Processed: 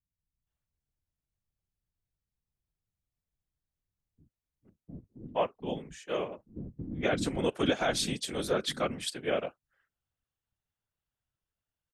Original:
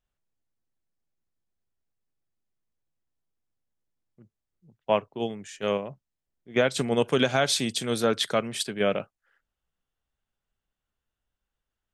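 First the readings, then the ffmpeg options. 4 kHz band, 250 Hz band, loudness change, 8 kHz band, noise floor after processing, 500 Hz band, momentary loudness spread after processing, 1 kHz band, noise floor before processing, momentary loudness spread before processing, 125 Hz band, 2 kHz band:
−6.0 dB, −4.5 dB, −6.0 dB, −6.0 dB, below −85 dBFS, −6.0 dB, 15 LU, −5.0 dB, below −85 dBFS, 10 LU, −4.5 dB, −6.0 dB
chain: -filter_complex "[0:a]acrossover=split=220[link_01][link_02];[link_02]adelay=470[link_03];[link_01][link_03]amix=inputs=2:normalize=0,adynamicequalizer=threshold=0.00708:dfrequency=250:dqfactor=2.1:tfrequency=250:tqfactor=2.1:attack=5:release=100:ratio=0.375:range=2.5:mode=boostabove:tftype=bell,afftfilt=real='hypot(re,im)*cos(2*PI*random(0))':imag='hypot(re,im)*sin(2*PI*random(1))':win_size=512:overlap=0.75"

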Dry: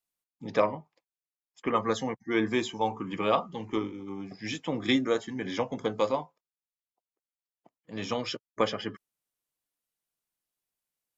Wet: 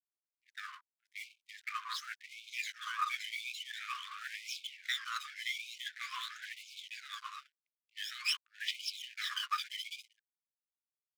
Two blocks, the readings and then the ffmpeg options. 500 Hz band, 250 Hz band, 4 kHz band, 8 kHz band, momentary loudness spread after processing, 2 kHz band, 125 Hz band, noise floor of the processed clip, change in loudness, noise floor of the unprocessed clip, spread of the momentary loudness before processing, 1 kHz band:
below −40 dB, below −40 dB, +0.5 dB, can't be measured, 12 LU, −1.5 dB, below −40 dB, below −85 dBFS, −9.0 dB, below −85 dBFS, 12 LU, −9.0 dB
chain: -af "adynamicequalizer=threshold=0.00224:dfrequency=4000:dqfactor=4.3:tfrequency=4000:tqfactor=4.3:attack=5:release=100:ratio=0.375:range=2.5:mode=boostabove:tftype=bell,aecho=1:1:570|912|1117|1240|1314:0.631|0.398|0.251|0.158|0.1,areverse,acompressor=threshold=-33dB:ratio=8,areverse,highpass=250,lowpass=6000,aphaser=in_gain=1:out_gain=1:delay=1:decay=0.76:speed=0.46:type=triangular,aeval=exprs='sgn(val(0))*max(abs(val(0))-0.00376,0)':channel_layout=same,agate=range=-16dB:threshold=-48dB:ratio=16:detection=peak,aeval=exprs='clip(val(0),-1,0.0158)':channel_layout=same,equalizer=frequency=710:width=1.2:gain=10,afftfilt=real='re*gte(b*sr/1024,990*pow(2200/990,0.5+0.5*sin(2*PI*0.93*pts/sr)))':imag='im*gte(b*sr/1024,990*pow(2200/990,0.5+0.5*sin(2*PI*0.93*pts/sr)))':win_size=1024:overlap=0.75,volume=3.5dB"

